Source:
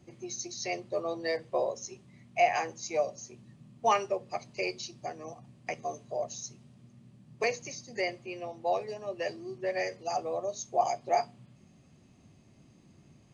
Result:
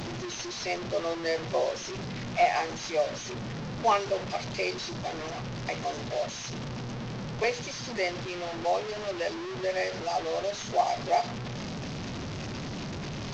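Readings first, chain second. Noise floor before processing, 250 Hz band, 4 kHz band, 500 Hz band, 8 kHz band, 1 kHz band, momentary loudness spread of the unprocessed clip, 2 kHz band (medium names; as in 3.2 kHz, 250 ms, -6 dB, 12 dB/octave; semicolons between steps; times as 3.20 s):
-60 dBFS, +7.5 dB, +7.5 dB, +2.5 dB, no reading, +2.0 dB, 13 LU, +3.5 dB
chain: one-bit delta coder 32 kbps, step -32.5 dBFS; in parallel at -9 dB: saturation -24.5 dBFS, distortion -12 dB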